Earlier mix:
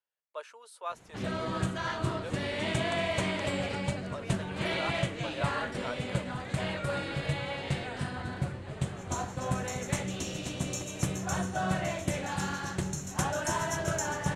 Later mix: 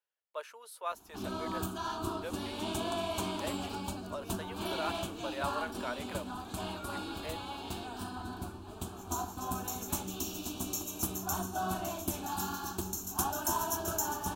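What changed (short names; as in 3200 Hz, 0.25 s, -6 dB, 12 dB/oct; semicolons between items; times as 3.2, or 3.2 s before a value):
background: add fixed phaser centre 530 Hz, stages 6; master: remove Chebyshev low-pass 8900 Hz, order 3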